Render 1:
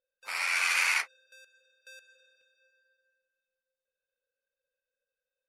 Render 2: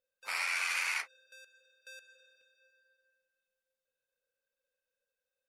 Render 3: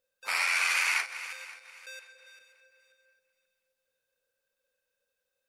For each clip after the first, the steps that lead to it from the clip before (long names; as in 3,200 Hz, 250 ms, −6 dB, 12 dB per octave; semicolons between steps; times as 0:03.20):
downward compressor 6 to 1, threshold −30 dBFS, peak gain reduction 7.5 dB
feedback delay that plays each chunk backwards 266 ms, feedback 50%, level −13 dB; level +6 dB